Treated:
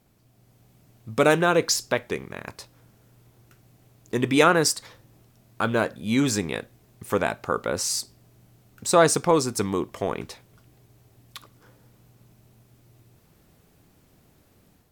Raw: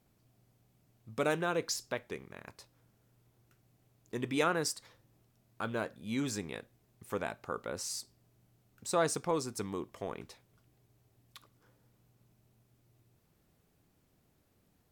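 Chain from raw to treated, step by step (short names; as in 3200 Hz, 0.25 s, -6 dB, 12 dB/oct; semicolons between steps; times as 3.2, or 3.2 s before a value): AGC gain up to 5 dB; gain +7.5 dB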